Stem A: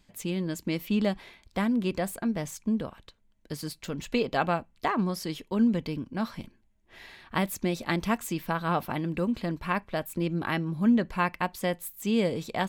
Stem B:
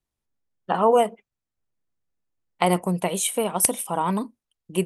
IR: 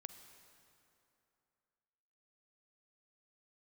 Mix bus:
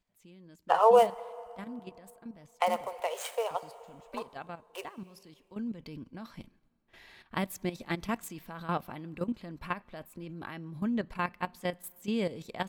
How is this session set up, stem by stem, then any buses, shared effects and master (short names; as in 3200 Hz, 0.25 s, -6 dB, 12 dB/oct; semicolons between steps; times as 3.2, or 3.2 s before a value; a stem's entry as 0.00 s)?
5.27 s -15 dB -> 5.97 s -4 dB, 0.00 s, send -13 dB, level quantiser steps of 13 dB
+2.5 dB, 0.00 s, muted 3.6–4.13, send -8 dB, median filter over 9 samples; Chebyshev high-pass 460 Hz, order 5; auto duck -14 dB, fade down 1.70 s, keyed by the first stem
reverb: on, RT60 2.8 s, pre-delay 38 ms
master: dry